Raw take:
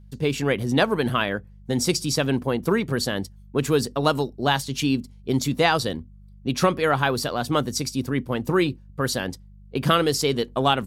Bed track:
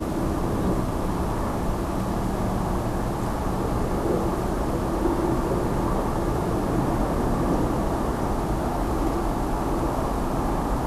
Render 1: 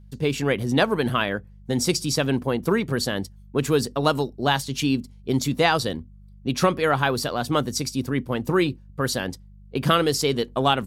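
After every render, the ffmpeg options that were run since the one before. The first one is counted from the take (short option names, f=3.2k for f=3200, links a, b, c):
-af anull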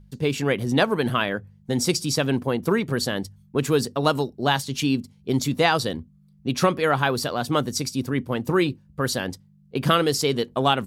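-af "bandreject=f=50:t=h:w=4,bandreject=f=100:t=h:w=4"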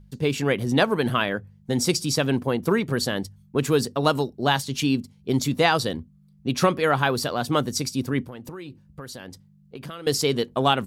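-filter_complex "[0:a]asettb=1/sr,asplit=3[a][b][c];[a]atrim=end=8.254[d];[b]atrim=start=8.25:end=10.07,asetpts=PTS-STARTPTS,afade=t=in:d=0.004:c=qsin,afade=t=out:st=1.816:d=0.004:c=qsin,acompressor=threshold=-35dB:ratio=6:attack=3.2:release=140:knee=1:detection=peak[e];[c]atrim=start=10.066[f];[d][e]acrossfade=d=0.004:c1=hsin:c2=qsin[g];[g][f]acrossfade=d=0.004:c1=qsin:c2=hsin"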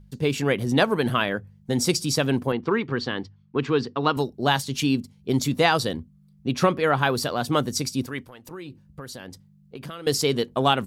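-filter_complex "[0:a]asettb=1/sr,asplit=3[a][b][c];[a]atrim=end=2.524[d];[b]atrim=start=2.52:end=4.17,asetpts=PTS-STARTPTS,afade=t=in:d=0.004:c=qsin,afade=t=out:st=1.646:d=0.004:c=qsin,highpass=110,equalizer=f=180:t=q:w=4:g=-8,equalizer=f=600:t=q:w=4:g=-9,equalizer=f=1.1k:t=q:w=4:g=3,equalizer=f=3.9k:t=q:w=4:g=-3,lowpass=f=4.3k:w=0.5412,lowpass=f=4.3k:w=1.3066[e];[c]atrim=start=4.166[f];[d][e]acrossfade=d=0.004:c1=hsin:c2=qsin[g];[g][f]acrossfade=d=0.004:c1=qsin:c2=hsin,asettb=1/sr,asplit=3[h][i][j];[h]atrim=end=6.484[k];[i]atrim=start=6.48:end=7.02,asetpts=PTS-STARTPTS,afade=t=in:d=0.004:c=qsin,afade=t=out:st=0.536:d=0.004:c=qsin,highshelf=f=5.3k:g=-7.5[l];[j]atrim=start=7.016[m];[k][l]acrossfade=d=0.004:c1=hsin:c2=qsin[n];[n][m]acrossfade=d=0.004:c1=qsin:c2=hsin,asettb=1/sr,asplit=3[o][p][q];[o]atrim=end=8.064[r];[p]atrim=start=8.06:end=8.51,asetpts=PTS-STARTPTS,afade=t=in:d=0.004:c=qsin,afade=t=out:st=0.446:d=0.004:c=qsin,equalizer=f=180:w=0.37:g=-11[s];[q]atrim=start=8.506[t];[r][s]acrossfade=d=0.004:c1=hsin:c2=qsin[u];[u][t]acrossfade=d=0.004:c1=qsin:c2=hsin"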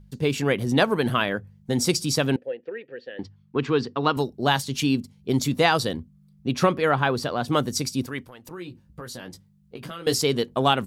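-filter_complex "[0:a]asettb=1/sr,asplit=3[a][b][c];[a]atrim=end=2.364[d];[b]atrim=start=2.36:end=3.19,asetpts=PTS-STARTPTS,afade=t=in:d=0.004:c=qsin,afade=t=out:st=0.826:d=0.004:c=qsin,asplit=3[e][f][g];[e]bandpass=f=530:t=q:w=8,volume=0dB[h];[f]bandpass=f=1.84k:t=q:w=8,volume=-6dB[i];[g]bandpass=f=2.48k:t=q:w=8,volume=-9dB[j];[h][i][j]amix=inputs=3:normalize=0[k];[c]atrim=start=3.186[l];[d][k]acrossfade=d=0.004:c1=hsin:c2=qsin[m];[m][l]acrossfade=d=0.004:c1=qsin:c2=hsin,asettb=1/sr,asplit=3[n][o][p];[n]atrim=end=6.954[q];[o]atrim=start=6.95:end=7.48,asetpts=PTS-STARTPTS,afade=t=in:d=0.004:c=qsin,afade=t=out:st=0.526:d=0.004:c=qsin,lowpass=f=3.4k:p=1[r];[p]atrim=start=7.476[s];[q][r]acrossfade=d=0.004:c1=hsin:c2=qsin[t];[t][s]acrossfade=d=0.004:c1=qsin:c2=hsin,asettb=1/sr,asplit=3[u][v][w];[u]atrim=end=8.564[x];[v]atrim=start=8.56:end=10.19,asetpts=PTS-STARTPTS,afade=t=in:d=0.004:c=qsin,afade=t=out:st=1.626:d=0.004:c=qsin,asplit=2[y][z];[z]adelay=17,volume=-6dB[aa];[y][aa]amix=inputs=2:normalize=0,atrim=end_sample=71883[ab];[w]atrim=start=10.186[ac];[x][ab]acrossfade=d=0.004:c1=hsin:c2=qsin[ad];[ad][ac]acrossfade=d=0.004:c1=qsin:c2=hsin"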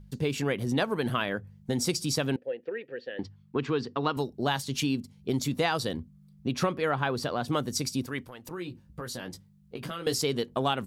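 -af "acompressor=threshold=-29dB:ratio=2"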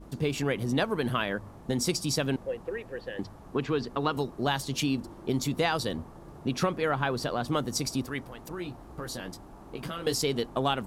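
-filter_complex "[1:a]volume=-23.5dB[a];[0:a][a]amix=inputs=2:normalize=0"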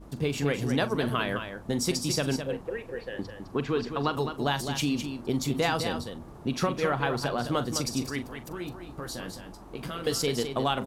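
-filter_complex "[0:a]asplit=2[a][b];[b]adelay=42,volume=-13.5dB[c];[a][c]amix=inputs=2:normalize=0,aecho=1:1:209:0.398"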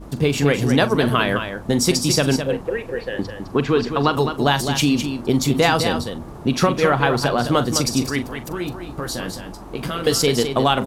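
-af "volume=10dB,alimiter=limit=-3dB:level=0:latency=1"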